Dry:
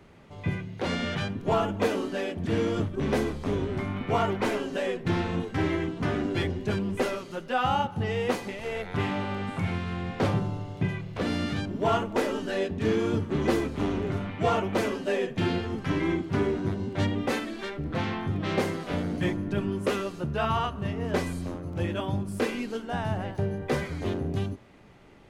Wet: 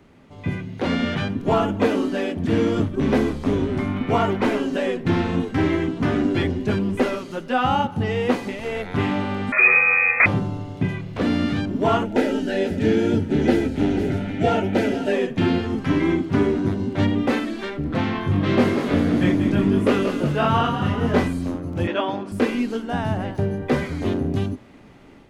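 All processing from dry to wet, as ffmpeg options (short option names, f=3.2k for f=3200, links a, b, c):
-filter_complex "[0:a]asettb=1/sr,asplit=3[a][b][c];[a]atrim=end=9.524[d];[b]atrim=start=9.52:end=10.26,asetpts=PTS-STARTPTS,afade=t=in:d=0.004:c=qsin,afade=t=out:st=0.736:d=0.004:c=qsin,aecho=1:1:1.5:0.53,atrim=end_sample=32634,aeval=exprs='0.251*sin(PI/2*2*val(0)/0.251)':c=same,lowpass=f=2.2k:t=q:w=0.5098,lowpass=f=2.2k:t=q:w=0.6013,lowpass=f=2.2k:t=q:w=0.9,lowpass=f=2.2k:t=q:w=2.563,afreqshift=-2600[e];[c]atrim=start=10.256[f];[d][e]acrossfade=d=0.004:c1=hsin:c2=qsin[g];[g][f]acrossfade=d=0.004:c1=qsin:c2=hsin,asettb=1/sr,asplit=3[h][i][j];[h]atrim=end=12.054[k];[i]atrim=start=12.05:end=15.13,asetpts=PTS-STARTPTS,afade=t=in:d=0.004:c=qsin,afade=t=out:st=3.076:d=0.004:c=qsin,asuperstop=centerf=1100:order=4:qfactor=2.8,aecho=1:1:489:0.224,atrim=end_sample=135828[l];[j]atrim=start=15.126[m];[k][l]acrossfade=d=0.004:c1=hsin:c2=qsin[n];[n][m]acrossfade=d=0.004:c1=qsin:c2=hsin,asettb=1/sr,asplit=3[o][p][q];[o]atrim=end=18.134[r];[p]atrim=start=18.13:end=21.28,asetpts=PTS-STARTPTS,afade=t=in:d=0.004:c=qsin,afade=t=out:st=3.146:d=0.004:c=qsin,asplit=2[s][t];[t]adelay=21,volume=-3dB[u];[s][u]amix=inputs=2:normalize=0,atrim=end_sample=138915,asplit=8[v][w][x][y][z][aa][ab][ac];[w]adelay=184,afreqshift=42,volume=-8.5dB[ad];[x]adelay=368,afreqshift=84,volume=-13.2dB[ae];[y]adelay=552,afreqshift=126,volume=-18dB[af];[z]adelay=736,afreqshift=168,volume=-22.7dB[ag];[aa]adelay=920,afreqshift=210,volume=-27.4dB[ah];[ab]adelay=1104,afreqshift=252,volume=-32.2dB[ai];[ac]adelay=1288,afreqshift=294,volume=-36.9dB[aj];[v][ad][ae][af][ag][ah][ai][aj]amix=inputs=8:normalize=0,atrim=end_sample=138915[ak];[q]atrim=start=21.276[al];[r][ak]acrossfade=d=0.004:c1=hsin:c2=qsin[am];[am][al]acrossfade=d=0.004:c1=qsin:c2=hsin,asettb=1/sr,asplit=3[an][ao][ap];[an]atrim=end=21.874[aq];[ao]atrim=start=21.87:end=22.32,asetpts=PTS-STARTPTS,afade=t=in:d=0.004:c=qsin,afade=t=out:st=0.446:d=0.004:c=qsin,highpass=440,lowpass=3.9k,acontrast=46[ar];[ap]atrim=start=22.316[as];[aq][ar]acrossfade=d=0.004:c1=hsin:c2=qsin[at];[at][as]acrossfade=d=0.004:c1=qsin:c2=hsin,acrossover=split=4100[au][av];[av]acompressor=threshold=-50dB:ratio=4:attack=1:release=60[aw];[au][aw]amix=inputs=2:normalize=0,equalizer=f=260:t=o:w=0.45:g=7,dynaudnorm=f=350:g=3:m=5dB"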